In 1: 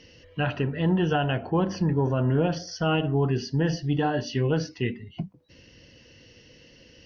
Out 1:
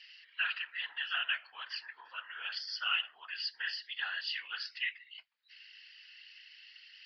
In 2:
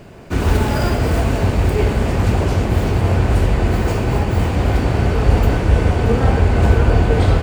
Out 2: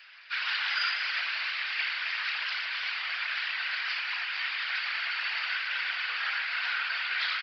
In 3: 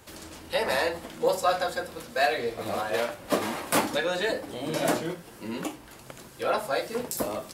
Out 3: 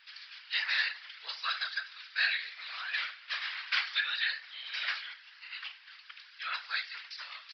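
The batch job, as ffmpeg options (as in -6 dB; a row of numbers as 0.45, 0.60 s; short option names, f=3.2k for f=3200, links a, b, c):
-af "asuperpass=centerf=3800:order=8:qfactor=0.55,aresample=11025,aresample=44100,afftfilt=real='hypot(re,im)*cos(2*PI*random(0))':imag='hypot(re,im)*sin(2*PI*random(1))':win_size=512:overlap=0.75,volume=8dB"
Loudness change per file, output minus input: -10.5, -13.0, -5.0 LU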